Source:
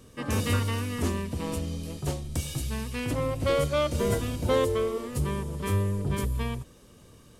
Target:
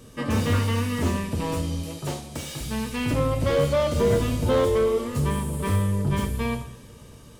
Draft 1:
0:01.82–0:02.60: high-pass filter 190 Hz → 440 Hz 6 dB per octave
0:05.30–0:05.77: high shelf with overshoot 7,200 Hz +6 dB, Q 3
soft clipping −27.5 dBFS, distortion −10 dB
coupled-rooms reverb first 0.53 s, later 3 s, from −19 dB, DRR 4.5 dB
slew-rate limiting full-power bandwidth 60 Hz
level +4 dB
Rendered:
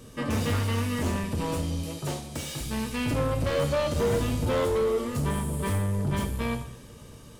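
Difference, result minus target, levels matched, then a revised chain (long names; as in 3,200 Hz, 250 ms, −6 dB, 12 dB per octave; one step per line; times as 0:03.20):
soft clipping: distortion +12 dB
0:01.82–0:02.60: high-pass filter 190 Hz → 440 Hz 6 dB per octave
0:05.30–0:05.77: high shelf with overshoot 7,200 Hz +6 dB, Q 3
soft clipping −17 dBFS, distortion −22 dB
coupled-rooms reverb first 0.53 s, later 3 s, from −19 dB, DRR 4.5 dB
slew-rate limiting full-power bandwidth 60 Hz
level +4 dB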